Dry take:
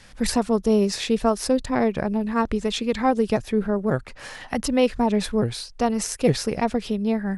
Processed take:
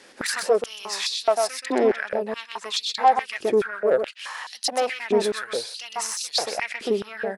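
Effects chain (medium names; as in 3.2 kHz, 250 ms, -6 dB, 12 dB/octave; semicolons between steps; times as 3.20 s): saturation -16.5 dBFS, distortion -12 dB; delay 127 ms -5 dB; step-sequenced high-pass 4.7 Hz 360–4200 Hz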